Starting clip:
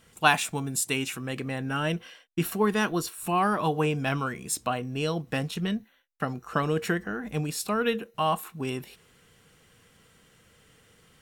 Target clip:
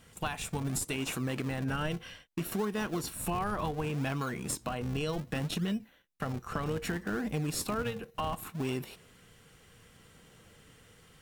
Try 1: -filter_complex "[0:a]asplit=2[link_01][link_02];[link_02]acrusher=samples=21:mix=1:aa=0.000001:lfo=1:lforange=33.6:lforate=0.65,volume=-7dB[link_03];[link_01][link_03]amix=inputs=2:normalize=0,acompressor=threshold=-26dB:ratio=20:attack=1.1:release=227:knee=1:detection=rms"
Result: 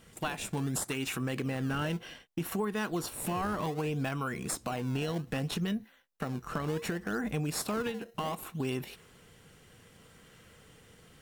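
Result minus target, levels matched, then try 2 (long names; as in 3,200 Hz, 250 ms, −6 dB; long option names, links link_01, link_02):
sample-and-hold swept by an LFO: distortion −8 dB
-filter_complex "[0:a]asplit=2[link_01][link_02];[link_02]acrusher=samples=80:mix=1:aa=0.000001:lfo=1:lforange=128:lforate=0.65,volume=-7dB[link_03];[link_01][link_03]amix=inputs=2:normalize=0,acompressor=threshold=-26dB:ratio=20:attack=1.1:release=227:knee=1:detection=rms"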